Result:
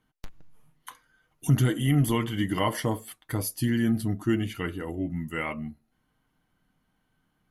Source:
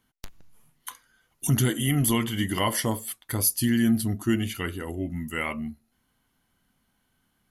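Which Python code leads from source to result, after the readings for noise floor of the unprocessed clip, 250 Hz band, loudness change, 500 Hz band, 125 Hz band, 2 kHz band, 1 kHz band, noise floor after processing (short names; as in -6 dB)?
-73 dBFS, -1.5 dB, -1.5 dB, 0.0 dB, +1.0 dB, -2.5 dB, -0.5 dB, -74 dBFS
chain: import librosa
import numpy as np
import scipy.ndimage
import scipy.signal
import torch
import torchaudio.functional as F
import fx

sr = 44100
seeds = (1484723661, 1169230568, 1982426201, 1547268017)

y = fx.high_shelf(x, sr, hz=3200.0, db=-11.0)
y = y + 0.33 * np.pad(y, (int(6.5 * sr / 1000.0), 0))[:len(y)]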